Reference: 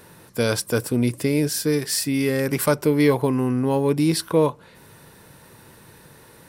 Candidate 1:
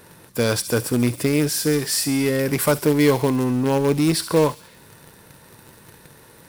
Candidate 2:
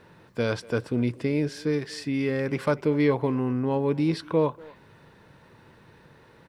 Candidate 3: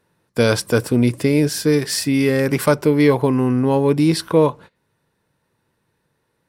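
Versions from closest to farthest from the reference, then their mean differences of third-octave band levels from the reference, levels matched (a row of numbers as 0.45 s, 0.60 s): 1, 2, 3; 3.0 dB, 4.5 dB, 6.5 dB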